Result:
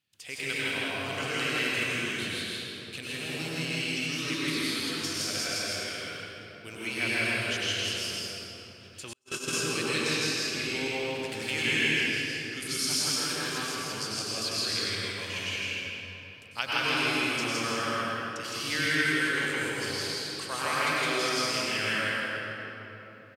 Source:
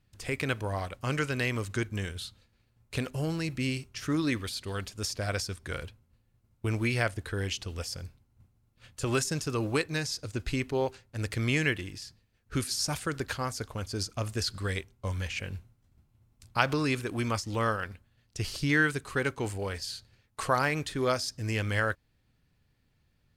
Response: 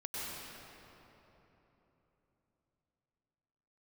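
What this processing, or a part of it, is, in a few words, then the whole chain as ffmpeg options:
stadium PA: -filter_complex "[0:a]highpass=170,equalizer=f=3k:t=o:w=0.83:g=7,aecho=1:1:163.3|218.7:0.891|0.282[a];[1:a]atrim=start_sample=2205[b];[a][b]afir=irnorm=-1:irlink=0,asettb=1/sr,asplit=3[c][d][e];[c]atrim=end=9.134[f];[d]atrim=start=9.13:end=9.53,asetpts=PTS-STARTPTS,afade=t=in:d=0.004:c=qsin,afade=t=out:st=0.396:d=0.004:c=qsin,agate=range=-45dB:threshold=-23dB:ratio=16:detection=peak[g];[e]atrim=start=9.526[h];[f][g]acrossfade=d=0.004:c1=hsin:c2=qsin[i];[i][h]acrossfade=d=0.004:c1=qsin:c2=hsin,highshelf=f=2k:g=11,volume=-8dB"

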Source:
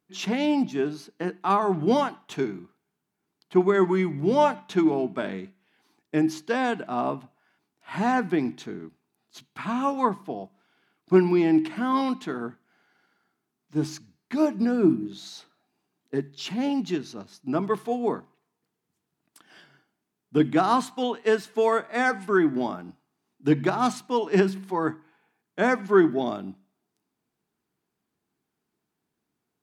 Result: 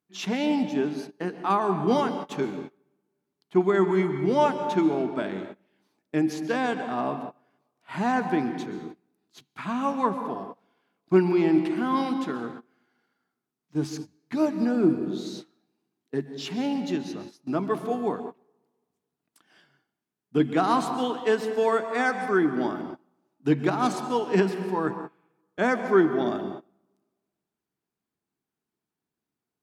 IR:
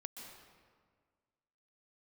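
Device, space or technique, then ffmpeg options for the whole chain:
keyed gated reverb: -filter_complex "[0:a]asplit=3[a][b][c];[1:a]atrim=start_sample=2205[d];[b][d]afir=irnorm=-1:irlink=0[e];[c]apad=whole_len=1306628[f];[e][f]sidechaingate=range=-25dB:threshold=-44dB:ratio=16:detection=peak,volume=5.5dB[g];[a][g]amix=inputs=2:normalize=0,volume=-7.5dB"

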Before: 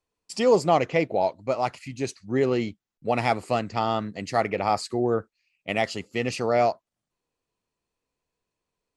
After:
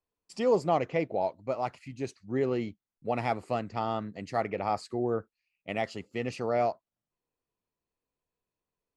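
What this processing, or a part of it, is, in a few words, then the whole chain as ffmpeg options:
behind a face mask: -af "highshelf=f=2.8k:g=-8,volume=-5.5dB"

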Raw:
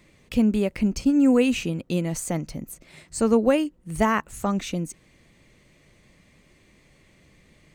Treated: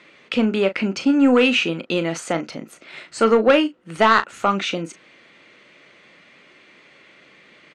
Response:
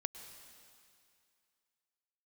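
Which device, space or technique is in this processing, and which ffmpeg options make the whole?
intercom: -filter_complex "[0:a]highpass=330,lowpass=4.2k,equalizer=f=1.4k:t=o:w=0.36:g=9,asoftclip=type=tanh:threshold=-14.5dB,equalizer=f=3k:t=o:w=1:g=5,asplit=2[a][b];[b]adelay=36,volume=-11.5dB[c];[a][c]amix=inputs=2:normalize=0,volume=8dB"

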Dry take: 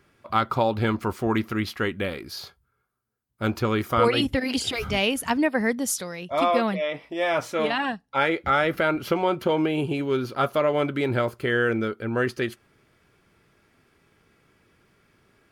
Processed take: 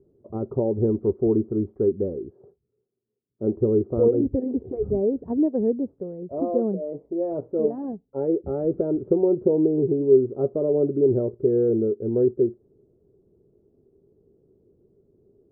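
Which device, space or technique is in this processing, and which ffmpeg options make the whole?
under water: -filter_complex "[0:a]asettb=1/sr,asplit=3[a][b][c];[a]atrim=end=2.304[d];[b]atrim=start=2.3:end=3.57,asetpts=PTS-STARTPTS,afade=t=in:d=0.004:c=qsin,afade=t=out:st=1.266:d=0.004:c=qsin,highpass=140[e];[c]atrim=start=3.566[f];[d][e]acrossfade=d=0.004:c1=hsin:c2=qsin[g];[g][f]acrossfade=d=0.004:c1=qsin:c2=hsin,lowpass=f=520:w=0.5412,lowpass=f=520:w=1.3066,equalizer=f=400:t=o:w=0.45:g=11"

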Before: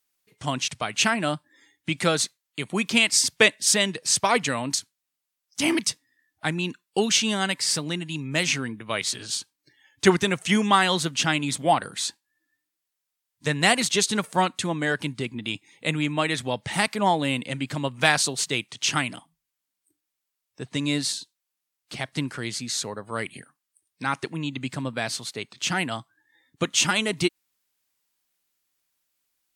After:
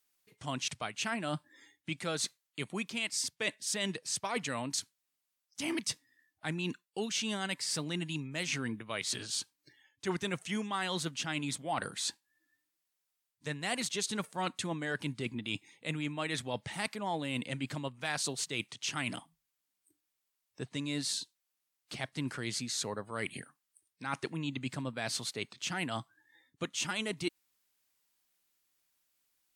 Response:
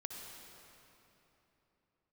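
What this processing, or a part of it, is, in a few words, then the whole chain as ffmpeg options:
compression on the reversed sound: -af "areverse,acompressor=threshold=-31dB:ratio=6,areverse,volume=-1.5dB"

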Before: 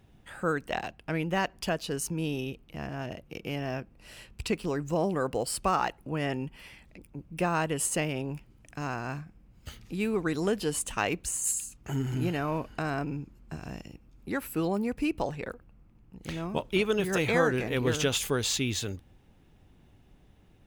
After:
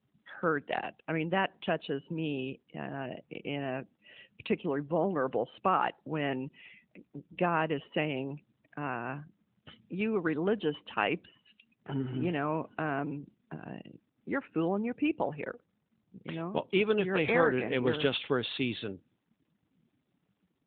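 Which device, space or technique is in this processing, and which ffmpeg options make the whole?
mobile call with aggressive noise cancelling: -af "highpass=170,afftdn=nr=20:nf=-50" -ar 8000 -c:a libopencore_amrnb -b:a 12200

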